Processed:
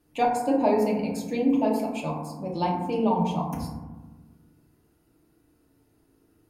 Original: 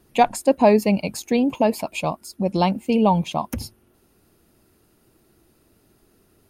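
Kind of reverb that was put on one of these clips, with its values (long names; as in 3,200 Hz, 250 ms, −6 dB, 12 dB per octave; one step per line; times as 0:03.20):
feedback delay network reverb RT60 1.2 s, low-frequency decay 1.55×, high-frequency decay 0.3×, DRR −3.5 dB
level −12 dB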